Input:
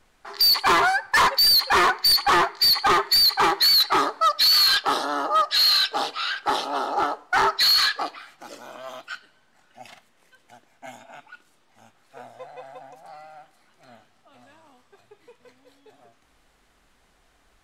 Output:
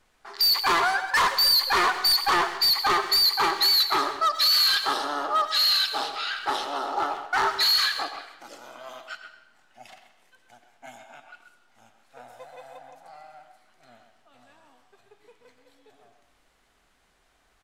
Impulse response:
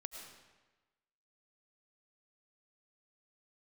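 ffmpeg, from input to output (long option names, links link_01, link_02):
-filter_complex "[0:a]asettb=1/sr,asplit=3[link_01][link_02][link_03];[link_01]atrim=end=12.284[link_04];[link_02]atrim=start=12.28:end=12.77,asetpts=PTS-STARTPTS,afade=type=in:duration=0.004:curve=qsin,afade=type=out:start_time=0.486:duration=0.004:curve=qsin,highshelf=frequency=7300:gain=12[link_05];[link_03]atrim=start=12.766[link_06];[link_04][link_05]acrossfade=duration=0.004:curve1=hsin:curve2=qsin[link_07];[link_07][link_06]acrossfade=duration=0.004:curve1=qsin:curve2=hsin,asplit=2[link_08][link_09];[link_09]adelay=130,highpass=300,lowpass=3400,asoftclip=type=hard:threshold=-23.5dB,volume=-8dB[link_10];[link_08][link_10]amix=inputs=2:normalize=0,asplit=2[link_11][link_12];[1:a]atrim=start_sample=2205,asetrate=52920,aresample=44100,lowshelf=frequency=350:gain=-11.5[link_13];[link_12][link_13]afir=irnorm=-1:irlink=0,volume=3dB[link_14];[link_11][link_14]amix=inputs=2:normalize=0,volume=-7.5dB"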